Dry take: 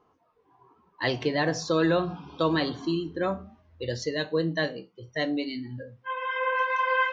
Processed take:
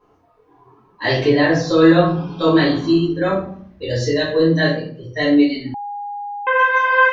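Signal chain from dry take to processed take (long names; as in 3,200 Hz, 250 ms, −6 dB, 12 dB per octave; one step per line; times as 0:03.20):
0:01.26–0:01.68: low-pass filter 4,600 Hz 12 dB per octave
rectangular room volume 52 cubic metres, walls mixed, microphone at 2.2 metres
0:05.74–0:06.47: beep over 818 Hz −24 dBFS
level −1 dB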